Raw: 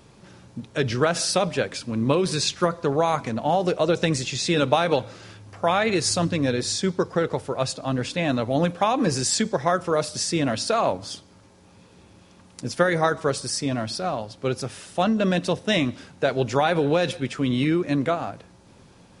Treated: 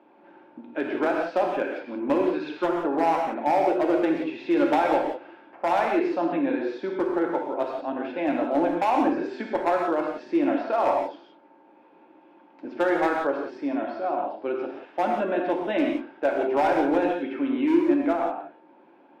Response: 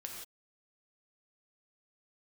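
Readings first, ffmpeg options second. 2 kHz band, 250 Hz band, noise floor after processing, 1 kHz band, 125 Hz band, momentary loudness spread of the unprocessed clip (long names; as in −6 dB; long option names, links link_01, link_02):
−3.5 dB, +0.5 dB, −55 dBFS, +1.0 dB, −20.0 dB, 7 LU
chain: -filter_complex "[0:a]highpass=frequency=310:width=0.5412,highpass=frequency=310:width=1.3066,equalizer=frequency=310:width_type=q:width=4:gain=9,equalizer=frequency=450:width_type=q:width=4:gain=-9,equalizer=frequency=860:width_type=q:width=4:gain=5,equalizer=frequency=1200:width_type=q:width=4:gain=-8,equalizer=frequency=1900:width_type=q:width=4:gain=-7,lowpass=frequency=2100:width=0.5412,lowpass=frequency=2100:width=1.3066,asoftclip=type=hard:threshold=-16.5dB[link_01];[1:a]atrim=start_sample=2205[link_02];[link_01][link_02]afir=irnorm=-1:irlink=0,volume=4dB"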